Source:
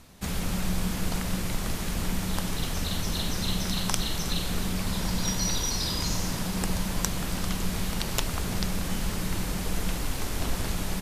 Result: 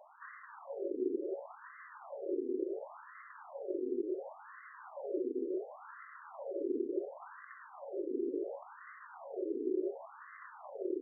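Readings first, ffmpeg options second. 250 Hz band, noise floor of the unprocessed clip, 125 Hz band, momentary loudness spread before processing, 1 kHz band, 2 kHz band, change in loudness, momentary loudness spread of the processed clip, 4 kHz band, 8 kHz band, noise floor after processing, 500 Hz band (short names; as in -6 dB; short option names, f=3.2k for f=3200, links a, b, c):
-8.5 dB, -32 dBFS, under -40 dB, 4 LU, -13.0 dB, -16.5 dB, -9.5 dB, 15 LU, under -40 dB, under -40 dB, -55 dBFS, +2.0 dB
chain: -filter_complex "[0:a]aeval=exprs='val(0)*sin(2*PI*370*n/s)':c=same,acrossover=split=210[a][b];[b]acompressor=threshold=-47dB:ratio=2.5[c];[a][c]amix=inputs=2:normalize=0,afftfilt=real='re*between(b*sr/1024,340*pow(1500/340,0.5+0.5*sin(2*PI*0.7*pts/sr))/1.41,340*pow(1500/340,0.5+0.5*sin(2*PI*0.7*pts/sr))*1.41)':imag='im*between(b*sr/1024,340*pow(1500/340,0.5+0.5*sin(2*PI*0.7*pts/sr))/1.41,340*pow(1500/340,0.5+0.5*sin(2*PI*0.7*pts/sr))*1.41)':win_size=1024:overlap=0.75,volume=6.5dB"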